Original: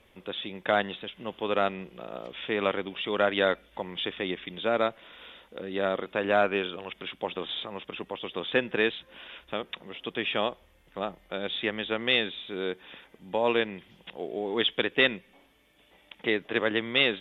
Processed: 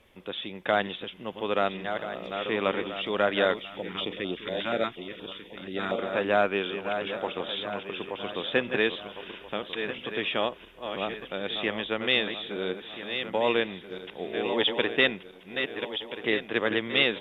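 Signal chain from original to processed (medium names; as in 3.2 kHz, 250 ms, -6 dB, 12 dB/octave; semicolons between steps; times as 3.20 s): backward echo that repeats 666 ms, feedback 57%, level -7.5 dB; 3.65–5.99 s: step-sequenced notch 8.4 Hz 450–2000 Hz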